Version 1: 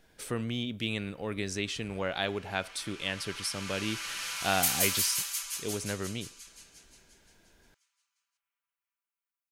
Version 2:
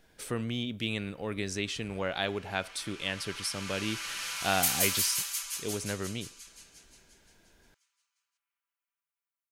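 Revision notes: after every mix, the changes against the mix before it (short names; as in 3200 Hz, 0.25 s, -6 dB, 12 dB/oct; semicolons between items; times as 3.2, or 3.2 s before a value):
none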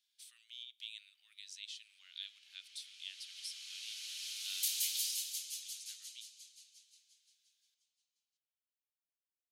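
speech -5.0 dB; master: add ladder high-pass 3000 Hz, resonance 45%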